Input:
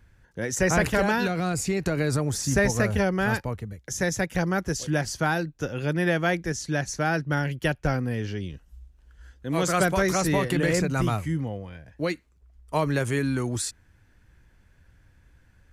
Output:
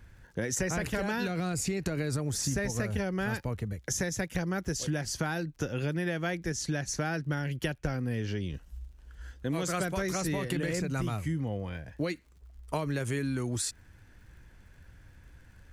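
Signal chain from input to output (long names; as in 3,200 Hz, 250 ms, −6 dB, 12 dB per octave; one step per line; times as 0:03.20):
dynamic equaliser 910 Hz, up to −4 dB, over −37 dBFS, Q 0.86
downward compressor 6 to 1, threshold −32 dBFS, peak gain reduction 13.5 dB
surface crackle 75 per second −58 dBFS
level +3.5 dB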